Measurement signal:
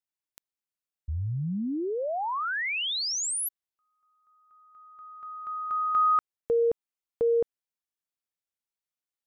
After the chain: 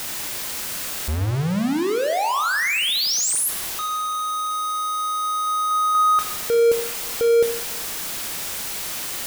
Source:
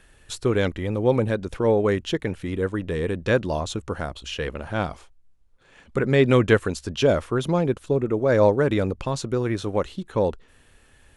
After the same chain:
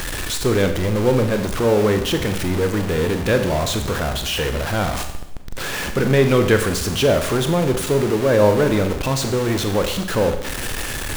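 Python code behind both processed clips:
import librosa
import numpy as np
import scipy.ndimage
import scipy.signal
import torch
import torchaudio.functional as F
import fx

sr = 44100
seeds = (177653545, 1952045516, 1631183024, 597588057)

y = x + 0.5 * 10.0 ** (-20.5 / 20.0) * np.sign(x)
y = fx.rev_schroeder(y, sr, rt60_s=0.82, comb_ms=30, drr_db=6.5)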